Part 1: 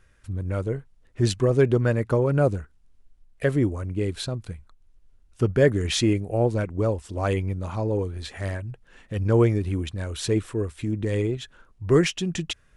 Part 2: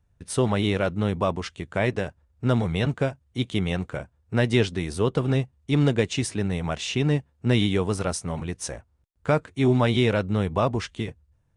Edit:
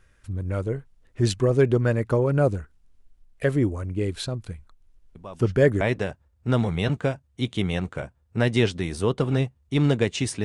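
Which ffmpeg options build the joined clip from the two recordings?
ffmpeg -i cue0.wav -i cue1.wav -filter_complex "[1:a]asplit=2[link_01][link_02];[0:a]apad=whole_dur=10.44,atrim=end=10.44,atrim=end=5.812[link_03];[link_02]atrim=start=1.778:end=6.41[link_04];[link_01]atrim=start=1.12:end=1.78,asetpts=PTS-STARTPTS,volume=-15.5dB,afade=type=in:duration=0.004:curve=hsin,afade=type=out:start_time=0.656:duration=0.004:curve=hsin,adelay=5150[link_05];[link_03][link_04]acrossfade=duration=0.004:curve1=hsin:curve2=hsin[link_06];[link_06][link_05]amix=inputs=2:normalize=0" out.wav

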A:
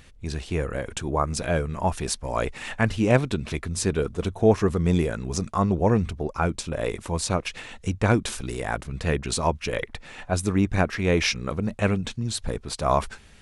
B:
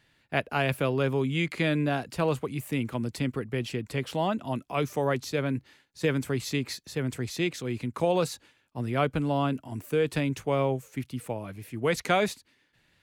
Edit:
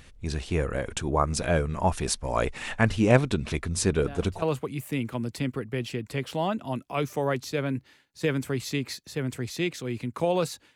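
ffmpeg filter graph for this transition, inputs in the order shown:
ffmpeg -i cue0.wav -i cue1.wav -filter_complex "[1:a]asplit=2[link_01][link_02];[0:a]apad=whole_dur=10.75,atrim=end=10.75,atrim=end=4.422[link_03];[link_02]atrim=start=2.218:end=8.55[link_04];[link_01]atrim=start=1.77:end=2.22,asetpts=PTS-STARTPTS,volume=-13.5dB,afade=type=in:duration=0.004:curve=hsin,afade=type=out:start_time=0.446:duration=0.004:curve=hsin,adelay=175077S[link_05];[link_03][link_04]acrossfade=duration=0.004:curve1=hsin:curve2=hsin[link_06];[link_06][link_05]amix=inputs=2:normalize=0" out.wav

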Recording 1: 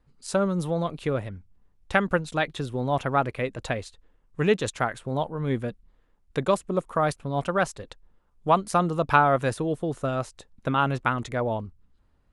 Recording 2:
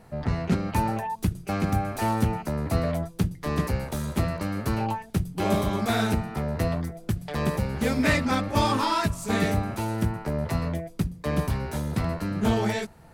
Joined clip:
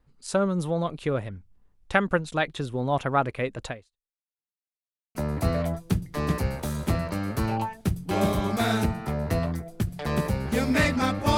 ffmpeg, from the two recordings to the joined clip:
ffmpeg -i cue0.wav -i cue1.wav -filter_complex "[0:a]apad=whole_dur=11.37,atrim=end=11.37,asplit=2[link_01][link_02];[link_01]atrim=end=4.51,asetpts=PTS-STARTPTS,afade=type=out:start_time=3.66:duration=0.85:curve=exp[link_03];[link_02]atrim=start=4.51:end=5.15,asetpts=PTS-STARTPTS,volume=0[link_04];[1:a]atrim=start=2.44:end=8.66,asetpts=PTS-STARTPTS,afade=type=in:duration=0.004:curve=hsin[link_05];[link_03][link_04][link_05]concat=n=3:v=0:a=1" out.wav

